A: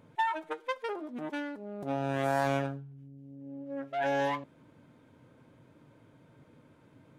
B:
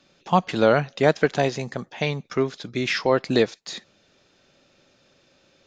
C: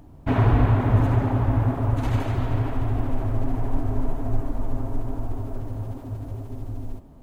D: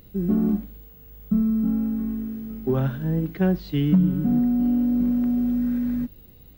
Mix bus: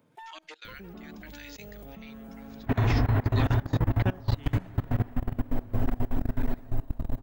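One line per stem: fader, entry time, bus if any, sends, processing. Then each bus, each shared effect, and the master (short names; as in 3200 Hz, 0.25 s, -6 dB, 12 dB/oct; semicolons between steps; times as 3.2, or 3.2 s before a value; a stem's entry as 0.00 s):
-11.5 dB, 0.00 s, no send, high shelf 9500 Hz +11.5 dB; three-band squash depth 100%
-8.0 dB, 0.00 s, no send, Chebyshev high-pass 1900 Hz, order 3
-3.0 dB, 2.40 s, no send, bell 1800 Hz +6 dB 0.42 oct
-8.0 dB, 0.65 s, no send, reverb removal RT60 0.82 s; high shelf 5600 Hz -8 dB; spectral compressor 2:1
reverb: off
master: low shelf 220 Hz +2 dB; level quantiser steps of 22 dB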